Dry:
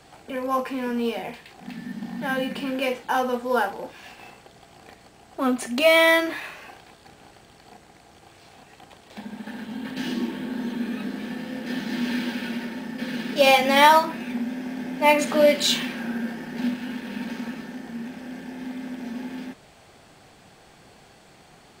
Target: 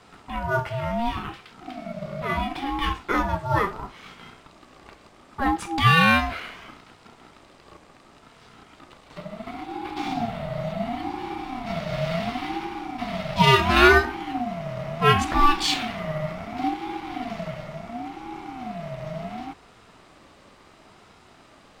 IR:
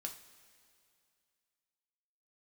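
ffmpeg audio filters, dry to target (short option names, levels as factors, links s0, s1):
-af "highshelf=f=8000:g=-10.5,aeval=exprs='val(0)*sin(2*PI*480*n/s+480*0.2/0.71*sin(2*PI*0.71*n/s))':c=same,volume=1.41"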